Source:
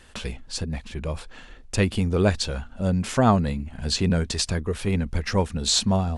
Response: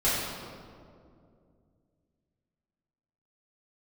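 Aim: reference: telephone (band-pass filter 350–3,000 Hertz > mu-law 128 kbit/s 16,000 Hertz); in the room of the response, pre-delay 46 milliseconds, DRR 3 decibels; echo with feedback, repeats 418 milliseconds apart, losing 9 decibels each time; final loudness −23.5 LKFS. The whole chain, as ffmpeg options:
-filter_complex "[0:a]aecho=1:1:418|836|1254|1672:0.355|0.124|0.0435|0.0152,asplit=2[link_01][link_02];[1:a]atrim=start_sample=2205,adelay=46[link_03];[link_02][link_03]afir=irnorm=-1:irlink=0,volume=-16dB[link_04];[link_01][link_04]amix=inputs=2:normalize=0,highpass=350,lowpass=3000,volume=4dB" -ar 16000 -c:a pcm_mulaw

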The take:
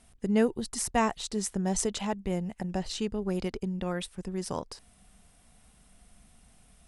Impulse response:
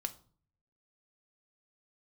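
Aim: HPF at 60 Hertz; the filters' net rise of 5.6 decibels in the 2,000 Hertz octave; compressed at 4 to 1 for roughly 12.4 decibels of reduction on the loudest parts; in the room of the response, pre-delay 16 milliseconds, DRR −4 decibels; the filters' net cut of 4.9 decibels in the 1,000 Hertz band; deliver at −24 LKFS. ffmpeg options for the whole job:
-filter_complex "[0:a]highpass=60,equalizer=frequency=1000:width_type=o:gain=-8.5,equalizer=frequency=2000:width_type=o:gain=9,acompressor=threshold=-35dB:ratio=4,asplit=2[link_01][link_02];[1:a]atrim=start_sample=2205,adelay=16[link_03];[link_02][link_03]afir=irnorm=-1:irlink=0,volume=4.5dB[link_04];[link_01][link_04]amix=inputs=2:normalize=0,volume=7.5dB"

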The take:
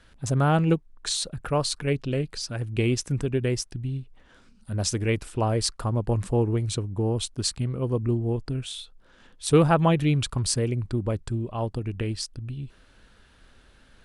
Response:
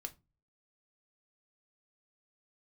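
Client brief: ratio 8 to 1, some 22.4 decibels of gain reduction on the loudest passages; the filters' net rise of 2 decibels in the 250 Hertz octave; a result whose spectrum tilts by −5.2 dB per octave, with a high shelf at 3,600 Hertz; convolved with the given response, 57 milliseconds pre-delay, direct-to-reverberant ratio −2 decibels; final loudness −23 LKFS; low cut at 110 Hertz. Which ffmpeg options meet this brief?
-filter_complex "[0:a]highpass=110,equalizer=frequency=250:width_type=o:gain=3.5,highshelf=frequency=3600:gain=-5.5,acompressor=threshold=-36dB:ratio=8,asplit=2[link_01][link_02];[1:a]atrim=start_sample=2205,adelay=57[link_03];[link_02][link_03]afir=irnorm=-1:irlink=0,volume=5.5dB[link_04];[link_01][link_04]amix=inputs=2:normalize=0,volume=13.5dB"

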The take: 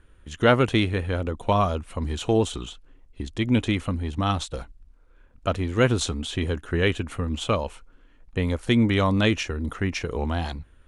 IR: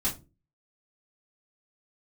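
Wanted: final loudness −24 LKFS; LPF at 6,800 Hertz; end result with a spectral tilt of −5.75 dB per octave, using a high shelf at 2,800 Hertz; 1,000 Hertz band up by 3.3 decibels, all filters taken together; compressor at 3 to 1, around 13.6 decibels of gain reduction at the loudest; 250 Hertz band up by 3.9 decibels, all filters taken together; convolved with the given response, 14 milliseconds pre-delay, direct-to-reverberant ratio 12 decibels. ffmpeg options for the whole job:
-filter_complex "[0:a]lowpass=6800,equalizer=frequency=250:width_type=o:gain=4.5,equalizer=frequency=1000:width_type=o:gain=4.5,highshelf=frequency=2800:gain=-3,acompressor=threshold=-31dB:ratio=3,asplit=2[link_01][link_02];[1:a]atrim=start_sample=2205,adelay=14[link_03];[link_02][link_03]afir=irnorm=-1:irlink=0,volume=-18.5dB[link_04];[link_01][link_04]amix=inputs=2:normalize=0,volume=8.5dB"

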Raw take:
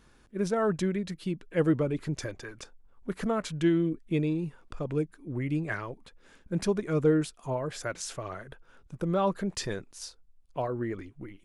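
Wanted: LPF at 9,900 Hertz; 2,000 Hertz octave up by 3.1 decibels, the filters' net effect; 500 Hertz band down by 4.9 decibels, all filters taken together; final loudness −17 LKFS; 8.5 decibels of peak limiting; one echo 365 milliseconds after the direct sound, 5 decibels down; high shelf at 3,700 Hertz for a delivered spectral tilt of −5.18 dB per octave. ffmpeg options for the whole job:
ffmpeg -i in.wav -af "lowpass=9900,equalizer=frequency=500:width_type=o:gain=-6.5,equalizer=frequency=2000:width_type=o:gain=3.5,highshelf=frequency=3700:gain=4.5,alimiter=limit=-24dB:level=0:latency=1,aecho=1:1:365:0.562,volume=17.5dB" out.wav

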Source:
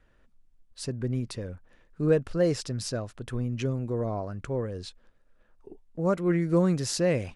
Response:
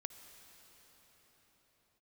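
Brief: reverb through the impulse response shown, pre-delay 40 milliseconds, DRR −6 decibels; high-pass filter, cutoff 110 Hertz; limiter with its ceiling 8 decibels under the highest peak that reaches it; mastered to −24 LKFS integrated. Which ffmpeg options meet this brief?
-filter_complex "[0:a]highpass=110,alimiter=limit=-19.5dB:level=0:latency=1,asplit=2[link_01][link_02];[1:a]atrim=start_sample=2205,adelay=40[link_03];[link_02][link_03]afir=irnorm=-1:irlink=0,volume=9dB[link_04];[link_01][link_04]amix=inputs=2:normalize=0,volume=0.5dB"

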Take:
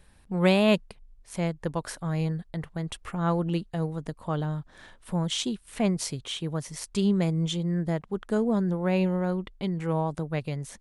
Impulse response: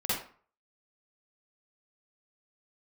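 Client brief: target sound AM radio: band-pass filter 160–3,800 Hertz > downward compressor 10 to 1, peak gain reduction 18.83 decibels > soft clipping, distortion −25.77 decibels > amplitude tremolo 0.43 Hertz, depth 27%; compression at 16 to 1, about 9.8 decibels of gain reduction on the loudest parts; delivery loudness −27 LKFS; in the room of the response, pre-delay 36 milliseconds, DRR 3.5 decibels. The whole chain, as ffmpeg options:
-filter_complex "[0:a]acompressor=threshold=-25dB:ratio=16,asplit=2[link_01][link_02];[1:a]atrim=start_sample=2205,adelay=36[link_03];[link_02][link_03]afir=irnorm=-1:irlink=0,volume=-11.5dB[link_04];[link_01][link_04]amix=inputs=2:normalize=0,highpass=160,lowpass=3800,acompressor=threshold=-40dB:ratio=10,asoftclip=threshold=-31.5dB,tremolo=f=0.43:d=0.27,volume=19dB"

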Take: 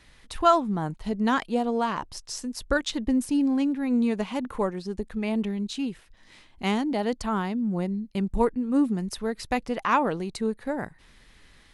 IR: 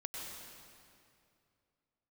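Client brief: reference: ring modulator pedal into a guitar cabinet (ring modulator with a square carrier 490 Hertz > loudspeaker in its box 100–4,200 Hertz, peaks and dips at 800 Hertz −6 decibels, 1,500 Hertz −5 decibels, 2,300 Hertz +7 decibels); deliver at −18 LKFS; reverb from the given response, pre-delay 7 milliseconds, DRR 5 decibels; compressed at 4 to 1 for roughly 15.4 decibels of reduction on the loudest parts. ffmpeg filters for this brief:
-filter_complex "[0:a]acompressor=threshold=-32dB:ratio=4,asplit=2[link_01][link_02];[1:a]atrim=start_sample=2205,adelay=7[link_03];[link_02][link_03]afir=irnorm=-1:irlink=0,volume=-4.5dB[link_04];[link_01][link_04]amix=inputs=2:normalize=0,aeval=exprs='val(0)*sgn(sin(2*PI*490*n/s))':channel_layout=same,highpass=100,equalizer=frequency=800:width_type=q:width=4:gain=-6,equalizer=frequency=1500:width_type=q:width=4:gain=-5,equalizer=frequency=2300:width_type=q:width=4:gain=7,lowpass=frequency=4200:width=0.5412,lowpass=frequency=4200:width=1.3066,volume=17dB"

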